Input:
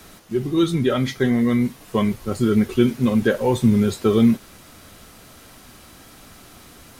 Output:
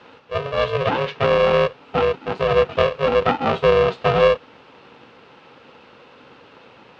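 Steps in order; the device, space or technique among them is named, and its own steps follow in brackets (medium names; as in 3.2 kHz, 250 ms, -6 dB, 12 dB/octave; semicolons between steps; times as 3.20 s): 1.23–1.67 s: bass shelf 130 Hz +11 dB; ring modulator pedal into a guitar cabinet (polarity switched at an audio rate 280 Hz; cabinet simulation 100–4100 Hz, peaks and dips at 130 Hz +5 dB, 250 Hz +5 dB, 480 Hz +10 dB, 870 Hz +7 dB, 1.3 kHz +8 dB, 2.7 kHz +8 dB); trim -5 dB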